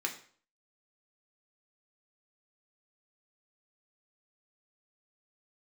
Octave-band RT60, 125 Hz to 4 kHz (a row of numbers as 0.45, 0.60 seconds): 0.50, 0.45, 0.50, 0.50, 0.45, 0.45 seconds